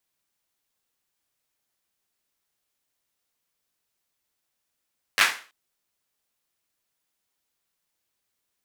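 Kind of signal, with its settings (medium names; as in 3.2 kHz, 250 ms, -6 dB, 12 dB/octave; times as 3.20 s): hand clap length 0.33 s, apart 10 ms, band 1.7 kHz, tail 0.37 s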